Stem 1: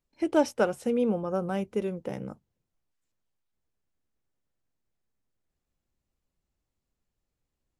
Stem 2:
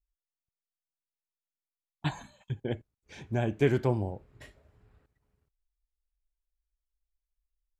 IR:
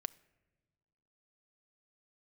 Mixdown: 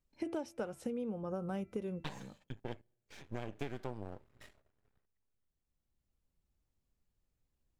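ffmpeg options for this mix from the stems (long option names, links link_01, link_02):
-filter_complex "[0:a]lowshelf=frequency=190:gain=7,bandreject=frequency=335.6:width_type=h:width=4,bandreject=frequency=671.2:width_type=h:width=4,bandreject=frequency=1006.8:width_type=h:width=4,bandreject=frequency=1342.4:width_type=h:width=4,bandreject=frequency=1678:width_type=h:width=4,bandreject=frequency=2013.6:width_type=h:width=4,bandreject=frequency=2349.2:width_type=h:width=4,bandreject=frequency=2684.8:width_type=h:width=4,volume=-4.5dB,asplit=2[link_01][link_02];[link_02]volume=-20dB[link_03];[1:a]agate=range=-12dB:threshold=-59dB:ratio=16:detection=peak,lowshelf=frequency=300:gain=-6,aeval=exprs='max(val(0),0)':channel_layout=same,volume=-2.5dB,asplit=3[link_04][link_05][link_06];[link_05]volume=-17.5dB[link_07];[link_06]apad=whole_len=343904[link_08];[link_01][link_08]sidechaincompress=threshold=-52dB:ratio=3:attack=16:release=1370[link_09];[2:a]atrim=start_sample=2205[link_10];[link_03][link_07]amix=inputs=2:normalize=0[link_11];[link_11][link_10]afir=irnorm=-1:irlink=0[link_12];[link_09][link_04][link_12]amix=inputs=3:normalize=0,acompressor=threshold=-35dB:ratio=12"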